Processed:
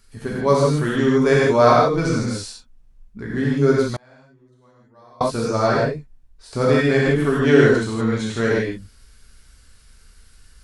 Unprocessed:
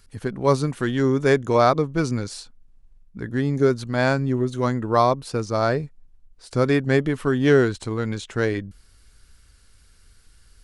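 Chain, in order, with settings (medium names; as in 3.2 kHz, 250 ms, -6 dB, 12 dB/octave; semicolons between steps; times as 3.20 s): gated-style reverb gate 190 ms flat, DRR -6 dB; 3.96–5.21 s: inverted gate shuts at -20 dBFS, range -33 dB; trim -2.5 dB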